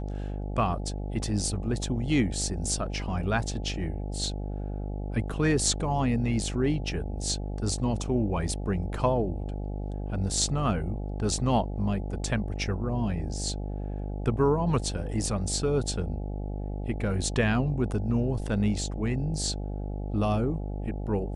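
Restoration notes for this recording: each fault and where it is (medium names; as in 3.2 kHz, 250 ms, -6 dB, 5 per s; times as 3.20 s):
buzz 50 Hz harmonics 17 -33 dBFS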